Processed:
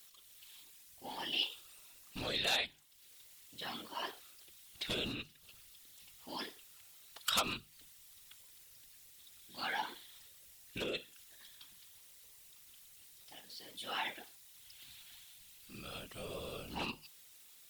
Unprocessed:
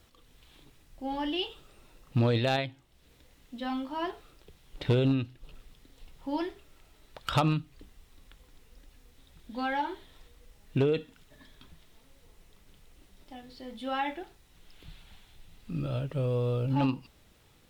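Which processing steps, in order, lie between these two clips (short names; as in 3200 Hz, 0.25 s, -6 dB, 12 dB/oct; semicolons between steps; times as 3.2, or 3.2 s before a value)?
pre-emphasis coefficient 0.97; whisperiser; notches 50/100/150 Hz; gain +8.5 dB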